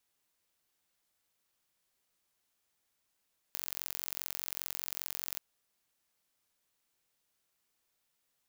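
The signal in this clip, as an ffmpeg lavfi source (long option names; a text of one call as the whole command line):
ffmpeg -f lavfi -i "aevalsrc='0.376*eq(mod(n,980),0)*(0.5+0.5*eq(mod(n,1960),0))':duration=1.83:sample_rate=44100" out.wav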